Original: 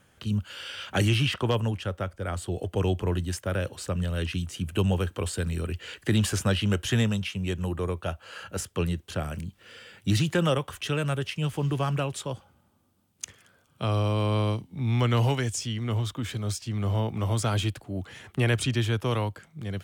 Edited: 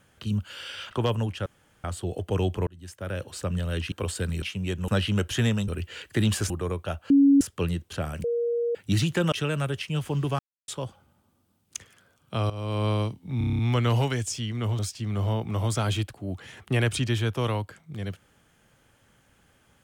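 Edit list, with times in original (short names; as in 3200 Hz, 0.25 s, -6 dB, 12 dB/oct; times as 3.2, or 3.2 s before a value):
0.91–1.36 cut
1.91–2.29 room tone
3.12–3.82 fade in
4.37–5.1 cut
5.6–6.42 swap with 7.22–7.68
8.28–8.59 bleep 279 Hz -13.5 dBFS
9.42–9.93 bleep 472 Hz -23 dBFS
10.5–10.8 cut
11.87–12.16 mute
13.98–14.33 fade in linear, from -15 dB
14.86 stutter 0.03 s, 8 plays
16.06–16.46 cut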